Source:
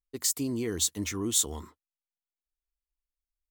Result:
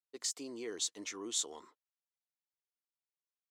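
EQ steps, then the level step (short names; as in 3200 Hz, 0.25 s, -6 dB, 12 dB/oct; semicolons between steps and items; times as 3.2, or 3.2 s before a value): Chebyshev band-pass 450–6100 Hz, order 2; -6.0 dB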